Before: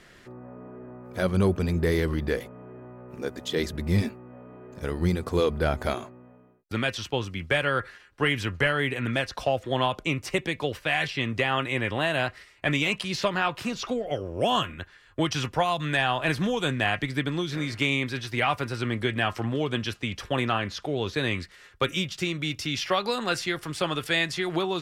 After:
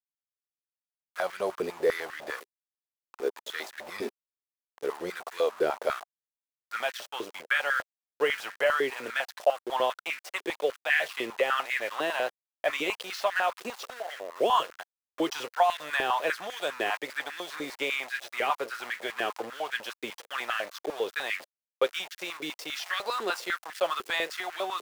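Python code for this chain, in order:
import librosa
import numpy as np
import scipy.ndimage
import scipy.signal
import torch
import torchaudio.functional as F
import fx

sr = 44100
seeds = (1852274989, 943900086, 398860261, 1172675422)

y = np.where(np.abs(x) >= 10.0 ** (-33.5 / 20.0), x, 0.0)
y = fx.filter_held_highpass(y, sr, hz=10.0, low_hz=400.0, high_hz=1700.0)
y = F.gain(torch.from_numpy(y), -6.0).numpy()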